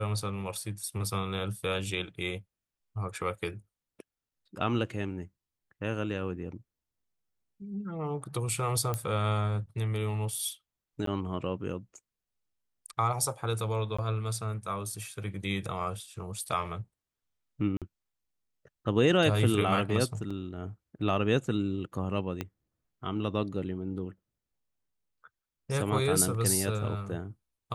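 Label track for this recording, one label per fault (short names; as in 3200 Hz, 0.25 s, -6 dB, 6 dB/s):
8.940000	8.940000	pop -17 dBFS
11.060000	11.070000	gap 13 ms
13.970000	13.980000	gap 15 ms
17.770000	17.820000	gap 47 ms
20.300000	20.300000	gap 5 ms
22.410000	22.410000	pop -19 dBFS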